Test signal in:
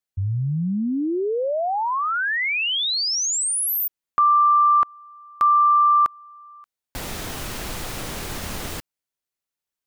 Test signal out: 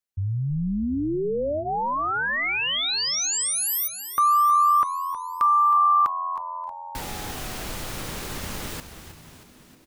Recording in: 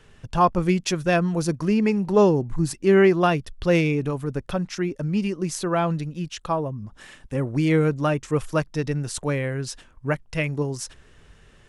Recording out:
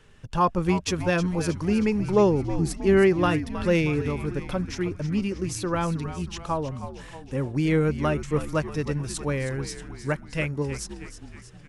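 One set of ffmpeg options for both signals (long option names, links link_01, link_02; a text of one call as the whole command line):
ffmpeg -i in.wav -filter_complex "[0:a]bandreject=frequency=690:width=12,asplit=2[link_01][link_02];[link_02]asplit=7[link_03][link_04][link_05][link_06][link_07][link_08][link_09];[link_03]adelay=316,afreqshift=-87,volume=-11.5dB[link_10];[link_04]adelay=632,afreqshift=-174,volume=-16.1dB[link_11];[link_05]adelay=948,afreqshift=-261,volume=-20.7dB[link_12];[link_06]adelay=1264,afreqshift=-348,volume=-25.2dB[link_13];[link_07]adelay=1580,afreqshift=-435,volume=-29.8dB[link_14];[link_08]adelay=1896,afreqshift=-522,volume=-34.4dB[link_15];[link_09]adelay=2212,afreqshift=-609,volume=-39dB[link_16];[link_10][link_11][link_12][link_13][link_14][link_15][link_16]amix=inputs=7:normalize=0[link_17];[link_01][link_17]amix=inputs=2:normalize=0,volume=-2.5dB" out.wav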